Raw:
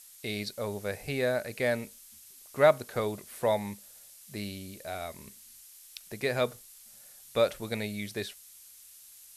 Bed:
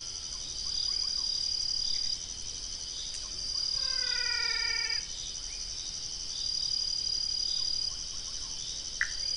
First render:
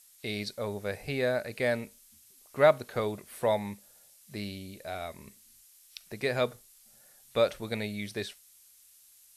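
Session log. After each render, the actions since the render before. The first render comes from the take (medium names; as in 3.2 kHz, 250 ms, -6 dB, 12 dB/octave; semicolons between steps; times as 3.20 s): noise print and reduce 6 dB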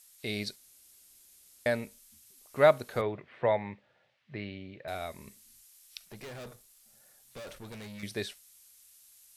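0.56–1.66 s: room tone; 3.01–4.88 s: cabinet simulation 100–3000 Hz, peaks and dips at 130 Hz +7 dB, 210 Hz -5 dB, 1.9 kHz +4 dB; 6.05–8.03 s: valve stage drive 42 dB, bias 0.55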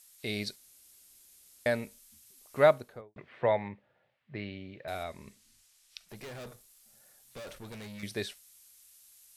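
2.58–3.16 s: studio fade out; 3.68–4.35 s: tape spacing loss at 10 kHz 23 dB; 5.03–6.09 s: distance through air 50 m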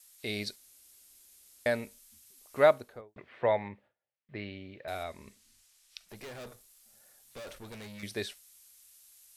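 gate with hold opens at -59 dBFS; peaking EQ 150 Hz -6 dB 0.7 oct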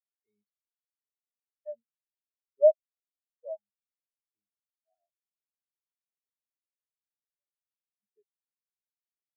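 waveshaping leveller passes 2; spectral contrast expander 4:1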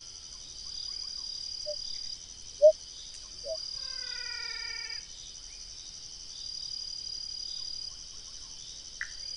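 add bed -7 dB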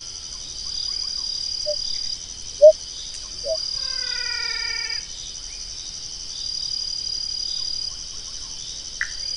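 trim +11.5 dB; peak limiter -2 dBFS, peak gain reduction 3 dB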